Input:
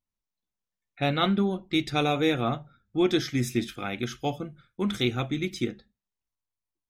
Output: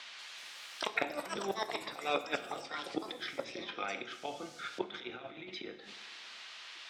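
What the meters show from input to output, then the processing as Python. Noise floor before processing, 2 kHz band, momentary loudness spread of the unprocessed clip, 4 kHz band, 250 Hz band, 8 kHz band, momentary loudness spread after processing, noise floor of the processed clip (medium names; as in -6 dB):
under -85 dBFS, -5.0 dB, 9 LU, -8.0 dB, -18.5 dB, -7.0 dB, 12 LU, -51 dBFS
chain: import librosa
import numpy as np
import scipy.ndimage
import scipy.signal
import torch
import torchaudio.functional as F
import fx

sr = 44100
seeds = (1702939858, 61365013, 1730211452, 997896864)

y = fx.octave_divider(x, sr, octaves=2, level_db=-1.0)
y = fx.dmg_noise_colour(y, sr, seeds[0], colour='violet', level_db=-57.0)
y = fx.auto_swell(y, sr, attack_ms=124.0)
y = fx.over_compress(y, sr, threshold_db=-32.0, ratio=-0.5)
y = fx.gate_flip(y, sr, shuts_db=-30.0, range_db=-25)
y = scipy.signal.sosfilt(scipy.signal.butter(4, 3800.0, 'lowpass', fs=sr, output='sos'), y)
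y = fx.rev_double_slope(y, sr, seeds[1], early_s=0.77, late_s=3.1, knee_db=-18, drr_db=8.5)
y = fx.echo_pitch(y, sr, ms=187, semitones=7, count=3, db_per_echo=-6.0)
y = scipy.signal.sosfilt(scipy.signal.butter(2, 520.0, 'highpass', fs=sr, output='sos'), y)
y = np.clip(y, -10.0 ** (-34.0 / 20.0), 10.0 ** (-34.0 / 20.0))
y = fx.band_squash(y, sr, depth_pct=40)
y = y * librosa.db_to_amplitude(18.0)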